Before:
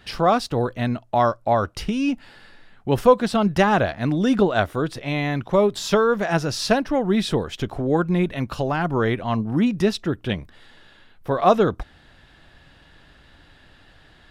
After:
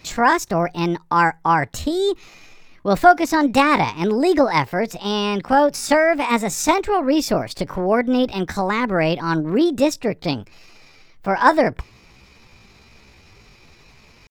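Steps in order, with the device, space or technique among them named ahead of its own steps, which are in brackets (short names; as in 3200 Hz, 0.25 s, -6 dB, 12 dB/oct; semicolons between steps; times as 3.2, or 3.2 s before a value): chipmunk voice (pitch shift +6 st); gain +2.5 dB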